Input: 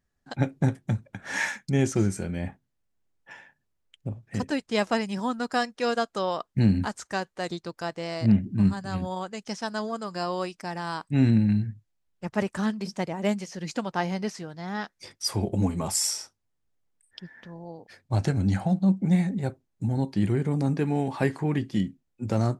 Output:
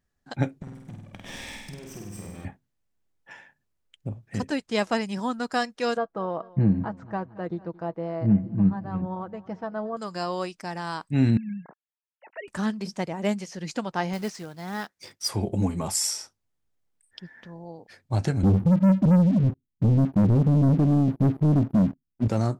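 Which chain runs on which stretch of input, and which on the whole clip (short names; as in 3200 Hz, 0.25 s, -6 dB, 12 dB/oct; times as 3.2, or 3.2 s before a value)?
0.62–2.45 minimum comb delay 0.37 ms + compressor 16:1, threshold -37 dBFS + flutter echo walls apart 8.4 m, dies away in 1 s
5.97–9.97 LPF 1100 Hz + comb 6.2 ms, depth 45% + feedback echo 0.224 s, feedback 57%, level -21 dB
11.37–12.48 sine-wave speech + HPF 870 Hz 6 dB/oct + notch 1200 Hz, Q 7.1
14.13–15.28 HPF 83 Hz 6 dB/oct + short-mantissa float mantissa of 2-bit
18.43–22.28 inverse Chebyshev band-stop 950–7200 Hz, stop band 60 dB + sample leveller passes 3
whole clip: dry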